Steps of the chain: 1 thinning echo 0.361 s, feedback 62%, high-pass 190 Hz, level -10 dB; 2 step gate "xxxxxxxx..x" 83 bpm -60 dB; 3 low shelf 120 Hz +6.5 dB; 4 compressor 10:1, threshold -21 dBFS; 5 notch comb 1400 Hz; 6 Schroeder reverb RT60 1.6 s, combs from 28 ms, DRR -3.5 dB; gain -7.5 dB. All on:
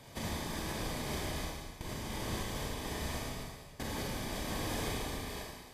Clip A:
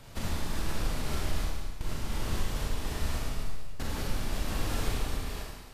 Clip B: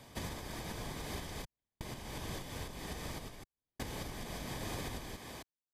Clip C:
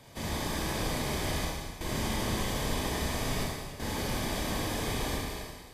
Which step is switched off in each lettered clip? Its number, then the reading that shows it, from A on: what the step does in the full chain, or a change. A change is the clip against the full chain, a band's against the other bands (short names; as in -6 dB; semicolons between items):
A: 5, 125 Hz band +4.5 dB; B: 6, crest factor change +2.5 dB; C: 4, mean gain reduction 6.0 dB